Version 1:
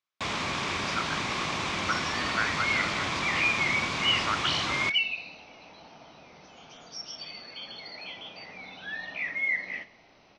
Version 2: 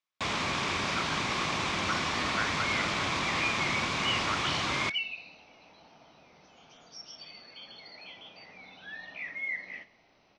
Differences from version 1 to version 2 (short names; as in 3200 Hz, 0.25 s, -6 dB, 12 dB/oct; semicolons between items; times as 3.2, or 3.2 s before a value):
speech -4.5 dB; second sound -6.5 dB